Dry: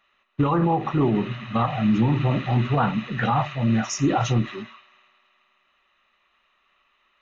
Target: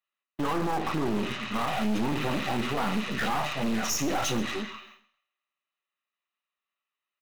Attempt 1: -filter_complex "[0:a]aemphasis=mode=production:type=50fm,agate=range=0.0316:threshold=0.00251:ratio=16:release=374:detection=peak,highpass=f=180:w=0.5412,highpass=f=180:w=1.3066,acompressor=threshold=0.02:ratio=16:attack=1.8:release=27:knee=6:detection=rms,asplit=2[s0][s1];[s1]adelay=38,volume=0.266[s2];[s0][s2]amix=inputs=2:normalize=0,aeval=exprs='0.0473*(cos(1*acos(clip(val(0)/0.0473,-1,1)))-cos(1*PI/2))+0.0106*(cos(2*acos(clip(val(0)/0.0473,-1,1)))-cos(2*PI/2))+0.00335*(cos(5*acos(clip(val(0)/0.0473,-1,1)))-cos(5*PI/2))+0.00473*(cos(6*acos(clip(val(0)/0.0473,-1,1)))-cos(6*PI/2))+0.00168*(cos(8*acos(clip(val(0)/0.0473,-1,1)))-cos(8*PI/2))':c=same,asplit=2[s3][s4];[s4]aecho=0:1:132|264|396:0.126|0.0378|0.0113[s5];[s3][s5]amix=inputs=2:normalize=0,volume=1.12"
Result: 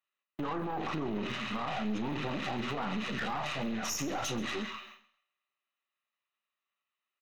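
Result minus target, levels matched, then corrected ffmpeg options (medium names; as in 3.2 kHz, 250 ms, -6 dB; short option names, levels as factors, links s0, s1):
compression: peak gain reduction +9.5 dB
-filter_complex "[0:a]aemphasis=mode=production:type=50fm,agate=range=0.0316:threshold=0.00251:ratio=16:release=374:detection=peak,highpass=f=180:w=0.5412,highpass=f=180:w=1.3066,acompressor=threshold=0.0631:ratio=16:attack=1.8:release=27:knee=6:detection=rms,asplit=2[s0][s1];[s1]adelay=38,volume=0.266[s2];[s0][s2]amix=inputs=2:normalize=0,aeval=exprs='0.0473*(cos(1*acos(clip(val(0)/0.0473,-1,1)))-cos(1*PI/2))+0.0106*(cos(2*acos(clip(val(0)/0.0473,-1,1)))-cos(2*PI/2))+0.00335*(cos(5*acos(clip(val(0)/0.0473,-1,1)))-cos(5*PI/2))+0.00473*(cos(6*acos(clip(val(0)/0.0473,-1,1)))-cos(6*PI/2))+0.00168*(cos(8*acos(clip(val(0)/0.0473,-1,1)))-cos(8*PI/2))':c=same,asplit=2[s3][s4];[s4]aecho=0:1:132|264|396:0.126|0.0378|0.0113[s5];[s3][s5]amix=inputs=2:normalize=0,volume=1.12"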